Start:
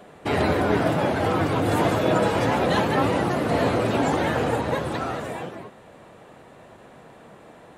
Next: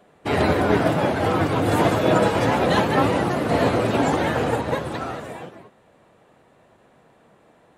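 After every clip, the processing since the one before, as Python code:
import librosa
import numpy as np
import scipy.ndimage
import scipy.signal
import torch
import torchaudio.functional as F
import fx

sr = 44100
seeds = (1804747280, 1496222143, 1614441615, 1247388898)

y = fx.upward_expand(x, sr, threshold_db=-42.0, expansion=1.5)
y = F.gain(torch.from_numpy(y), 3.5).numpy()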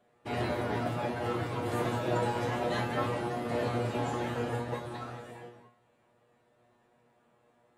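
y = fx.comb_fb(x, sr, f0_hz=120.0, decay_s=0.38, harmonics='all', damping=0.0, mix_pct=90)
y = F.gain(torch.from_numpy(y), -2.0).numpy()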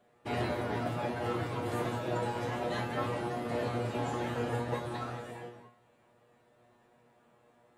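y = fx.rider(x, sr, range_db=4, speed_s=0.5)
y = F.gain(torch.from_numpy(y), -1.5).numpy()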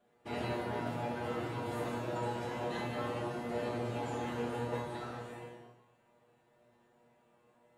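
y = fx.rev_gated(x, sr, seeds[0], gate_ms=310, shape='falling', drr_db=0.0)
y = F.gain(torch.from_numpy(y), -6.5).numpy()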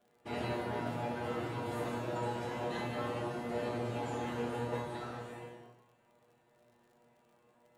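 y = fx.dmg_crackle(x, sr, seeds[1], per_s=56.0, level_db=-59.0)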